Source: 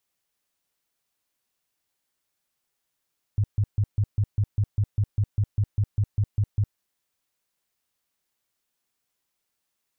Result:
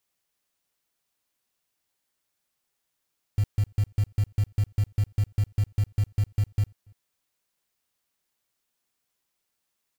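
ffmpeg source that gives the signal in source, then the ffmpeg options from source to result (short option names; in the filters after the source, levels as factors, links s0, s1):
-f lavfi -i "aevalsrc='0.126*sin(2*PI*103*mod(t,0.2))*lt(mod(t,0.2),6/103)':d=3.4:s=44100"
-filter_complex "[0:a]acrusher=bits=5:mode=log:mix=0:aa=0.000001,asplit=2[s0][s1];[s1]adelay=285.7,volume=0.0316,highshelf=f=4000:g=-6.43[s2];[s0][s2]amix=inputs=2:normalize=0"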